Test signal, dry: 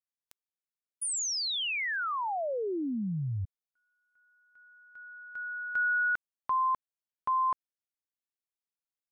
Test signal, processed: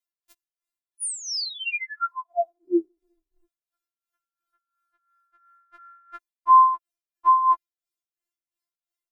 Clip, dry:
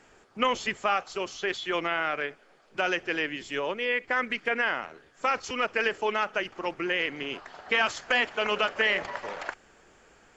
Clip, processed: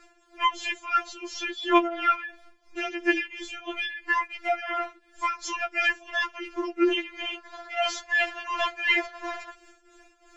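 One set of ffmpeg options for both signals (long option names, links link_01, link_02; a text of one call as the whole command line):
ffmpeg -i in.wav -af "tremolo=f=2.9:d=0.78,afftfilt=real='re*4*eq(mod(b,16),0)':imag='im*4*eq(mod(b,16),0)':win_size=2048:overlap=0.75,volume=7.5dB" out.wav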